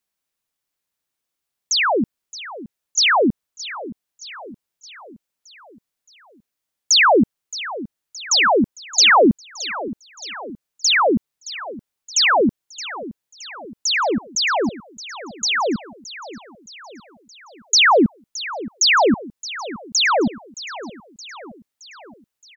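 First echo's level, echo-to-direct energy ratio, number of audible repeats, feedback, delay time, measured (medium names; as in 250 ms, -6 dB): -15.5 dB, -14.0 dB, 4, 55%, 620 ms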